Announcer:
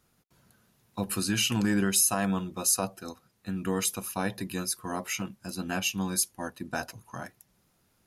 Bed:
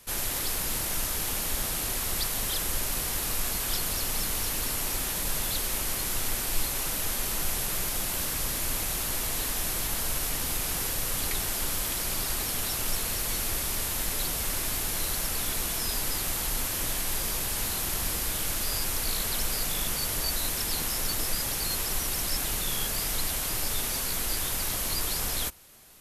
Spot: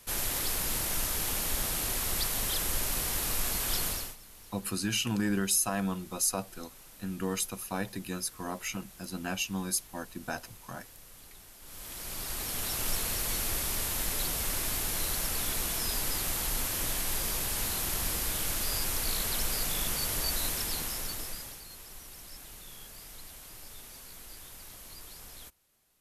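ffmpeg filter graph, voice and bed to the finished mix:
ffmpeg -i stem1.wav -i stem2.wav -filter_complex "[0:a]adelay=3550,volume=-3.5dB[link_01];[1:a]volume=19dB,afade=type=out:start_time=3.86:duration=0.3:silence=0.0891251,afade=type=in:start_time=11.61:duration=1.26:silence=0.0944061,afade=type=out:start_time=20.45:duration=1.19:silence=0.158489[link_02];[link_01][link_02]amix=inputs=2:normalize=0" out.wav

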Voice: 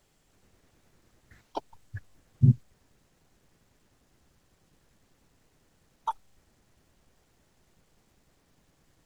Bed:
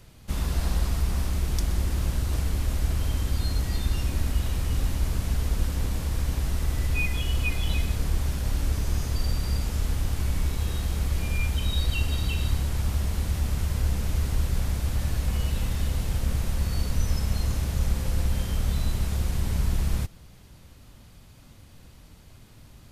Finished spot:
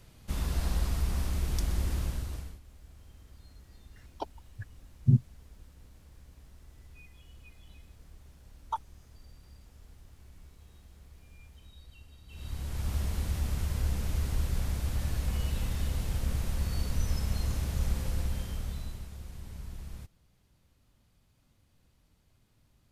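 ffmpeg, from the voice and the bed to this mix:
ffmpeg -i stem1.wav -i stem2.wav -filter_complex "[0:a]adelay=2650,volume=-2.5dB[link_01];[1:a]volume=18dB,afade=type=out:start_time=1.93:duration=0.67:silence=0.0707946,afade=type=in:start_time=12.27:duration=0.7:silence=0.0749894,afade=type=out:start_time=17.98:duration=1.12:silence=0.237137[link_02];[link_01][link_02]amix=inputs=2:normalize=0" out.wav

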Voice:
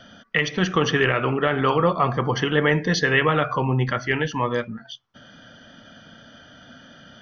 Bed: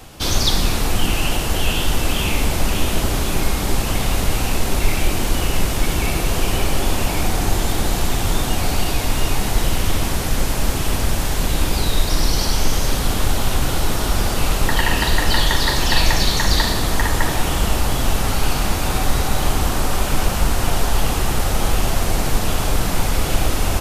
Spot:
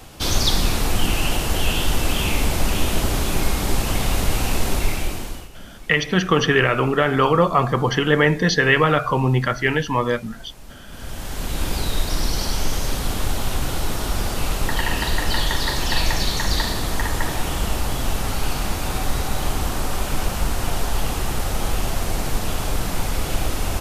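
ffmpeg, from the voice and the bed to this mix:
ffmpeg -i stem1.wav -i stem2.wav -filter_complex "[0:a]adelay=5550,volume=3dB[link_01];[1:a]volume=17dB,afade=type=out:start_time=4.68:duration=0.81:silence=0.0841395,afade=type=in:start_time=10.88:duration=0.83:silence=0.11885[link_02];[link_01][link_02]amix=inputs=2:normalize=0" out.wav

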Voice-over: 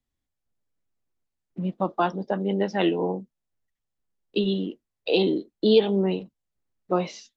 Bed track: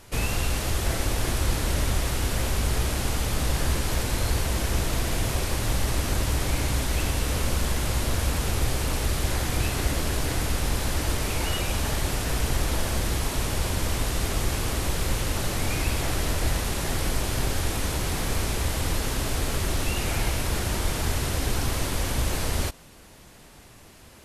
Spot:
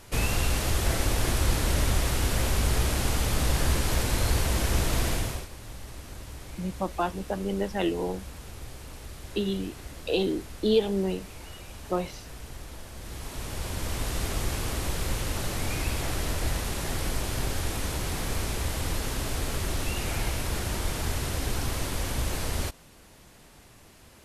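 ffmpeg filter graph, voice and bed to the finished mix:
ffmpeg -i stem1.wav -i stem2.wav -filter_complex "[0:a]adelay=5000,volume=-4.5dB[link_01];[1:a]volume=13dB,afade=type=out:start_time=5.07:duration=0.41:silence=0.149624,afade=type=in:start_time=12.95:duration=1.21:silence=0.223872[link_02];[link_01][link_02]amix=inputs=2:normalize=0" out.wav

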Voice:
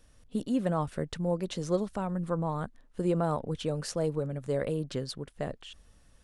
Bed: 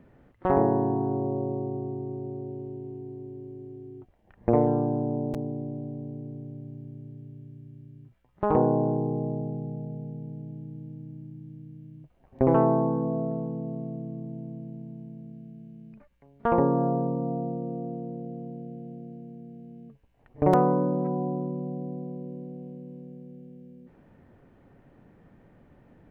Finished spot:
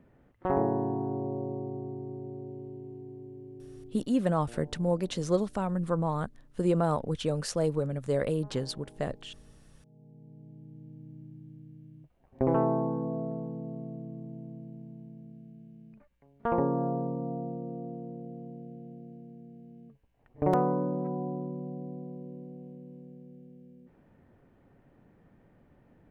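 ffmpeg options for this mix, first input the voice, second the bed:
ffmpeg -i stem1.wav -i stem2.wav -filter_complex "[0:a]adelay=3600,volume=2dB[link_01];[1:a]volume=18dB,afade=type=out:start_time=3.84:duration=0.35:silence=0.0707946,afade=type=in:start_time=9.82:duration=1.39:silence=0.0707946[link_02];[link_01][link_02]amix=inputs=2:normalize=0" out.wav

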